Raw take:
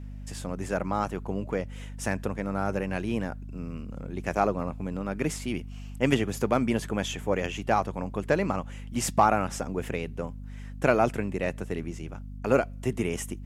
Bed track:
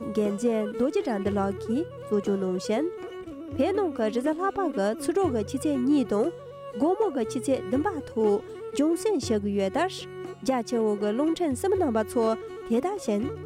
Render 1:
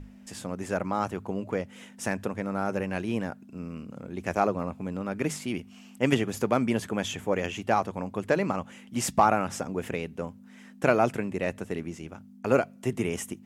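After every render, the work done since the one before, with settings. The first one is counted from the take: hum notches 50/100/150 Hz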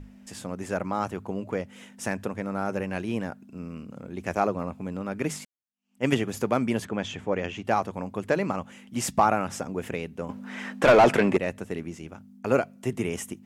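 5.45–6.05 s: fade in exponential; 6.85–7.65 s: distance through air 100 m; 10.29–11.37 s: overdrive pedal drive 27 dB, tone 1.7 kHz, clips at -7 dBFS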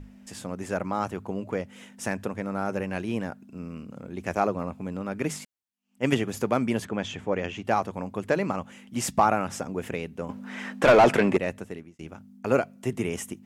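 11.53–11.99 s: fade out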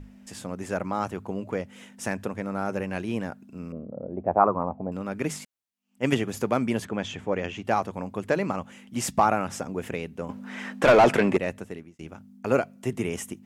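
3.72–4.92 s: touch-sensitive low-pass 510–1100 Hz up, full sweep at -21.5 dBFS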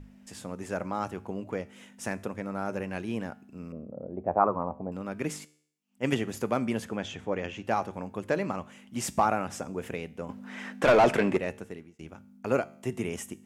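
feedback comb 75 Hz, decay 0.59 s, harmonics all, mix 40%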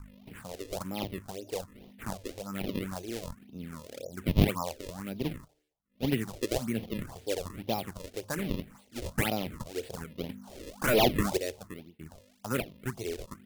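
decimation with a swept rate 33×, swing 160% 1.9 Hz; phase shifter stages 4, 1.2 Hz, lowest notch 170–1500 Hz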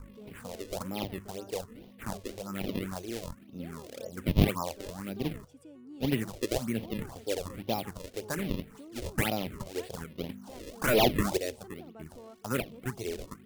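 add bed track -25.5 dB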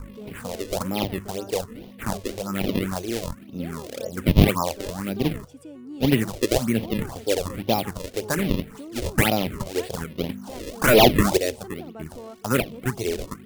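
trim +9.5 dB; peak limiter -2 dBFS, peak gain reduction 2.5 dB

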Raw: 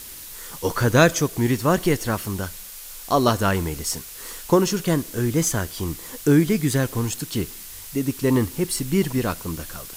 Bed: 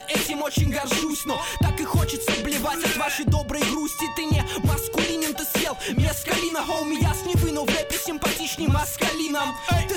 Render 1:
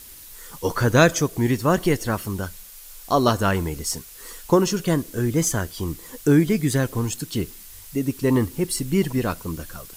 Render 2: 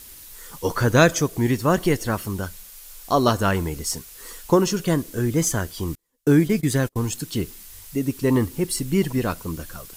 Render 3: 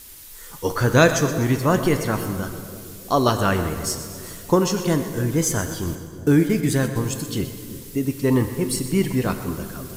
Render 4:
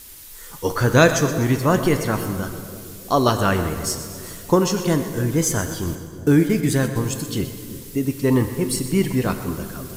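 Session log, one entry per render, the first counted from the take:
noise reduction 6 dB, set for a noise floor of -39 dBFS
5.95–6.96 s: gate -28 dBFS, range -35 dB
two-band feedback delay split 580 Hz, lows 327 ms, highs 125 ms, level -13.5 dB; plate-style reverb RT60 2 s, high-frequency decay 0.75×, DRR 8.5 dB
trim +1 dB

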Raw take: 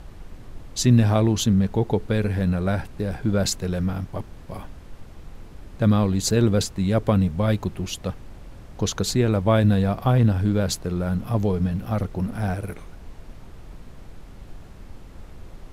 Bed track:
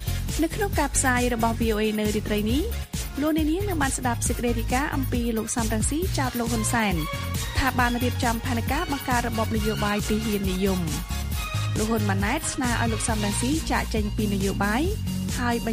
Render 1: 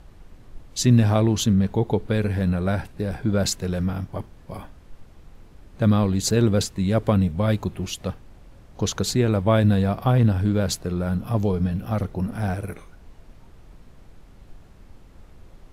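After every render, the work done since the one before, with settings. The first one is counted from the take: noise print and reduce 6 dB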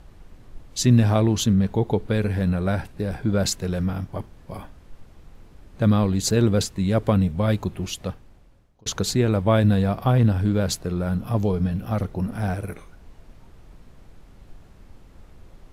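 7.97–8.86 s: fade out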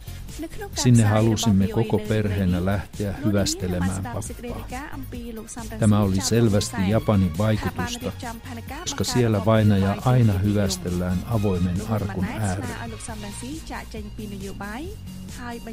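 add bed track -9 dB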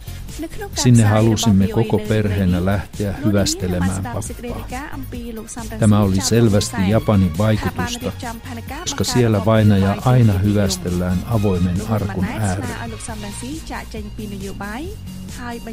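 trim +5 dB; peak limiter -3 dBFS, peak gain reduction 2 dB

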